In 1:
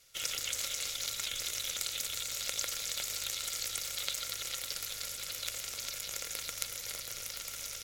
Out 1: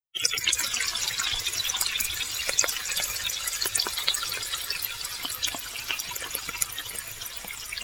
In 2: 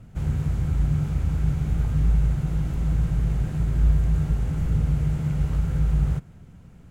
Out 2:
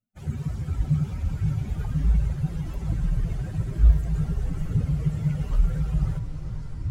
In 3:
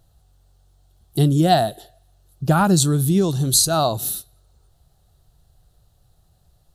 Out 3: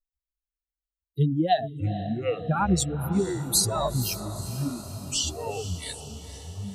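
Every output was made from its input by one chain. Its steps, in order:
per-bin expansion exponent 3; echoes that change speed 0.131 s, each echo -6 st, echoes 3, each echo -6 dB; on a send: diffused feedback echo 0.473 s, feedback 62%, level -13 dB; on the sum: match loudness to -27 LUFS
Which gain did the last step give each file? +17.0, +5.5, -2.5 dB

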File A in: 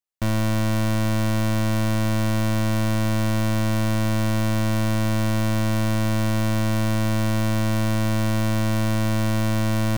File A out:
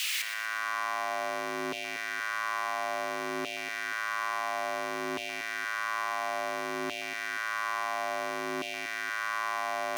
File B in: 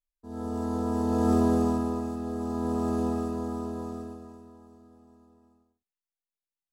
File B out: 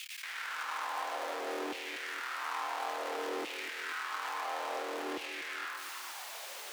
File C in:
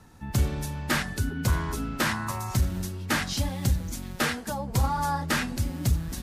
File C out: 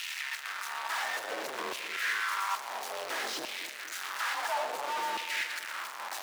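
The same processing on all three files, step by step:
infinite clipping; LFO high-pass saw down 0.58 Hz 300–2700 Hz; low shelf 470 Hz -10 dB; frequency shift +47 Hz; high shelf 5900 Hz -11.5 dB; on a send: split-band echo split 780 Hz, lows 0.237 s, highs 0.119 s, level -11 dB; on the sum: gain -3.5 dB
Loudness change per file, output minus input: -9.5, -9.0, -5.5 LU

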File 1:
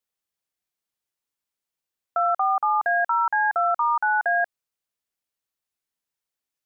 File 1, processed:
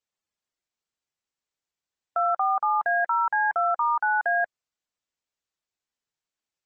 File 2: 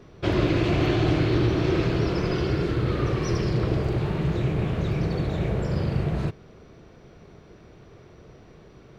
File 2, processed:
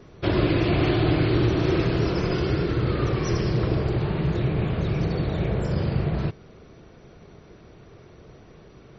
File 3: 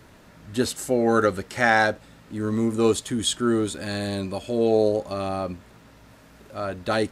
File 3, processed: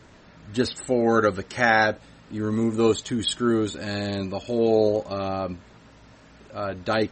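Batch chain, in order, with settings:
MP3 32 kbps 48000 Hz; match loudness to -24 LUFS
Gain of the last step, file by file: -1.5, +1.0, +0.5 dB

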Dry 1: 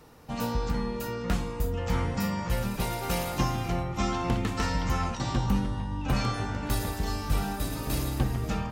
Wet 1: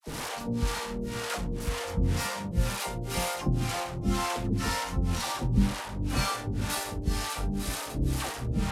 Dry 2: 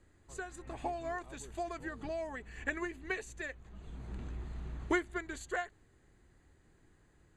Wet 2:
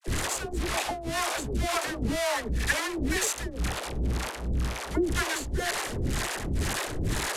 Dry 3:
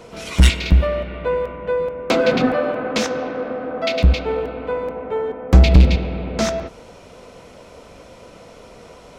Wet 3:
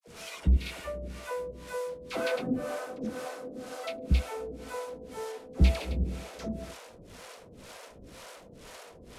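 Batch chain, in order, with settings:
delta modulation 64 kbps, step -28.5 dBFS; harmonic tremolo 2 Hz, depth 100%, crossover 460 Hz; dispersion lows, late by 77 ms, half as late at 740 Hz; normalise peaks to -12 dBFS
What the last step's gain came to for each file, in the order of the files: +3.5, +10.0, -9.5 dB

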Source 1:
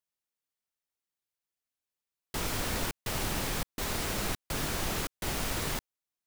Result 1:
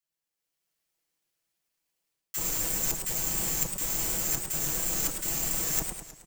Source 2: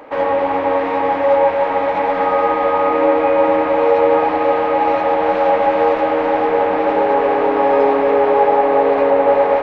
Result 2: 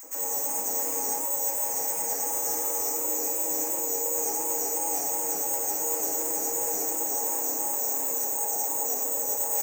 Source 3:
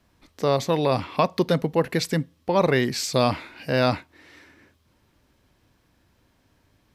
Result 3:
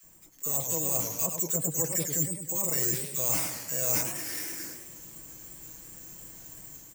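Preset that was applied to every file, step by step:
AGC gain up to 7.5 dB; careless resampling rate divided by 6×, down filtered, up zero stuff; reverse; compressor 12:1, threshold -25 dBFS; reverse; comb 6.1 ms, depth 65%; bands offset in time highs, lows 30 ms, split 1200 Hz; warbling echo 0.106 s, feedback 53%, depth 218 cents, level -6 dB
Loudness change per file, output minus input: +5.5, -10.5, -4.0 LU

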